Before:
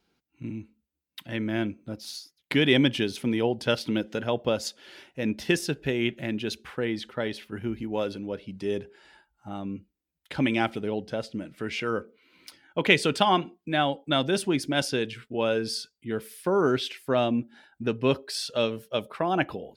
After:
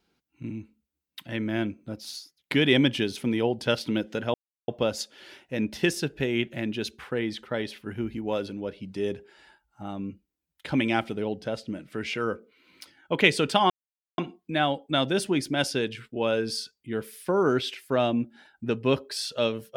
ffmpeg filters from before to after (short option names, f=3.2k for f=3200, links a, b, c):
-filter_complex "[0:a]asplit=3[a][b][c];[a]atrim=end=4.34,asetpts=PTS-STARTPTS,afade=t=out:st=4.336:d=0.004:c=hsin,apad=pad_dur=0.34[d];[b]atrim=start=4.34:end=13.36,asetpts=PTS-STARTPTS,afade=t=in:d=0.004:c=hsin,afade=t=out:st=9.016:d=0.004:c=hsin,apad=pad_dur=0.48[e];[c]atrim=start=13.36,asetpts=PTS-STARTPTS,afade=t=in:d=0.004:c=hsin[f];[d][e][f]concat=n=3:v=0:a=1"